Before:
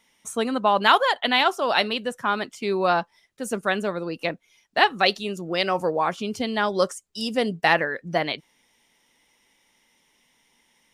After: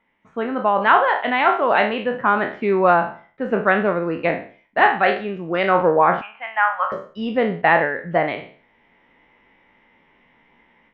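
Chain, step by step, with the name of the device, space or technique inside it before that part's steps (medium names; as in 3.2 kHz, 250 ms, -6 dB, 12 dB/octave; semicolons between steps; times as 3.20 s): spectral sustain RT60 0.42 s; 6.21–6.92 s: elliptic band-pass 780–2800 Hz, stop band 40 dB; action camera in a waterproof case (low-pass 2.2 kHz 24 dB/octave; level rider gain up to 11 dB; trim -1 dB; AAC 64 kbps 24 kHz)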